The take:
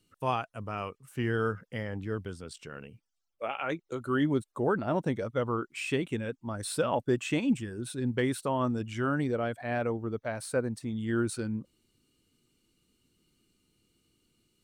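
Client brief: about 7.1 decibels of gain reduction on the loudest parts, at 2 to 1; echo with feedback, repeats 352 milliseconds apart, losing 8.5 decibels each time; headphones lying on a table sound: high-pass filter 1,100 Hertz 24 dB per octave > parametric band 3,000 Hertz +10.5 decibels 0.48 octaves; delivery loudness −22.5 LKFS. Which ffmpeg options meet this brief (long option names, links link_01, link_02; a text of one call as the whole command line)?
ffmpeg -i in.wav -af "acompressor=threshold=-35dB:ratio=2,highpass=frequency=1100:width=0.5412,highpass=frequency=1100:width=1.3066,equalizer=frequency=3000:width_type=o:width=0.48:gain=10.5,aecho=1:1:352|704|1056|1408:0.376|0.143|0.0543|0.0206,volume=18dB" out.wav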